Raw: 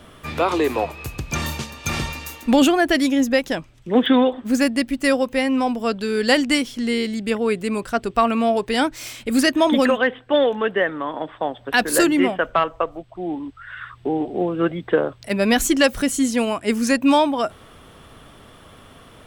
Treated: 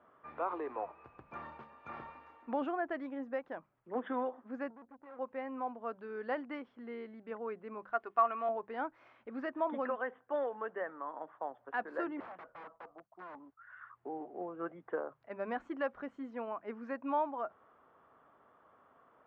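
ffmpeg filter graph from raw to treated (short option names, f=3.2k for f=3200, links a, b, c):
-filter_complex "[0:a]asettb=1/sr,asplit=3[a][b][c];[a]atrim=end=4.704[d];[b]atrim=start=4.7:end=5.19,asetpts=PTS-STARTPTS,afade=t=in:d=0.004:c=qsin,afade=t=out:st=0.486:d=0.004:c=qsin,asuperstop=centerf=1200:order=4:qfactor=4.6,aeval=exprs='(tanh(31.6*val(0)+0.6)-tanh(0.6))/31.6':c=same,adynamicsmooth=sensitivity=4.5:basefreq=610[e];[c]atrim=start=5.186[f];[d][e]acrossfade=d=0.004:c1=hsin:c2=qsin[g];[g][f]acrossfade=d=0.004:c1=qsin:c2=hsin,asettb=1/sr,asplit=3[h][i][j];[h]atrim=end=7.924[k];[i]atrim=start=7.92:end=8.49,asetpts=PTS-STARTPTS,afade=t=in:d=0.004:c=qsin,afade=t=out:st=0.566:d=0.004:c=qsin,tiltshelf=f=640:g=-6.5,aecho=1:1:2.8:0.4,atrim=end_sample=25137[l];[j]atrim=start=8.486[m];[k][l]acrossfade=d=0.004:c1=hsin:c2=qsin[n];[n][m]acrossfade=d=0.004:c1=qsin:c2=hsin,asettb=1/sr,asplit=3[o][p][q];[o]atrim=end=12.204[r];[p]atrim=start=12.2:end=13.59,asetpts=PTS-STARTPTS,afade=t=in:d=0.004:c=qsin,afade=t=out:st=1.386:d=0.004:c=qsin,aeval=exprs='(tanh(10*val(0)+0.4)-tanh(0.4))/10':c=same,agate=range=-33dB:threshold=-43dB:ratio=3:release=100:detection=peak,aeval=exprs='(mod(16.8*val(0)+1,2)-1)/16.8':c=same[s];[q]atrim=start=13.586[t];[r][s]acrossfade=d=0.004:c1=hsin:c2=qsin[u];[u][t]acrossfade=d=0.004:c1=qsin:c2=hsin,lowpass=f=1.2k:w=0.5412,lowpass=f=1.2k:w=1.3066,aderivative,bandreject=f=50:t=h:w=6,bandreject=f=100:t=h:w=6,bandreject=f=150:t=h:w=6,bandreject=f=200:t=h:w=6,volume=4.5dB"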